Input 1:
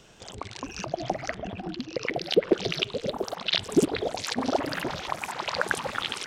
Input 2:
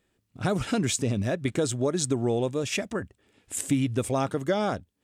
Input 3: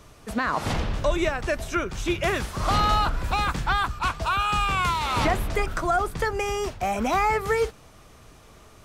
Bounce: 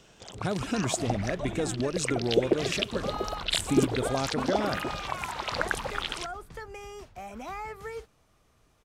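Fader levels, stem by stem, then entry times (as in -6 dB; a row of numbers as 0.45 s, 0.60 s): -2.5 dB, -4.0 dB, -15.5 dB; 0.00 s, 0.00 s, 0.35 s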